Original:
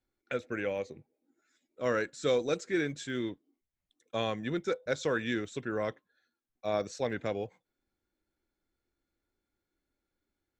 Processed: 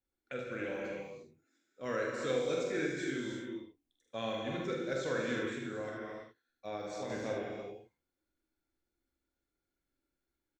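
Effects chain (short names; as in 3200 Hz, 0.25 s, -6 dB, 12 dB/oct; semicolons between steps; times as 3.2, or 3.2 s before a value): early reflections 45 ms -5.5 dB, 76 ms -7 dB; non-linear reverb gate 0.37 s flat, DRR 0 dB; 5.53–7.1 compressor, threshold -28 dBFS, peak gain reduction 5 dB; gain -8 dB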